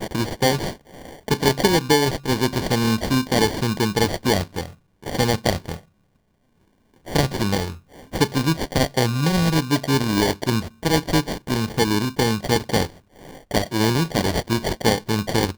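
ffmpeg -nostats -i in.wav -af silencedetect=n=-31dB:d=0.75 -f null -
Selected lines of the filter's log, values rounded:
silence_start: 5.77
silence_end: 7.08 | silence_duration: 1.31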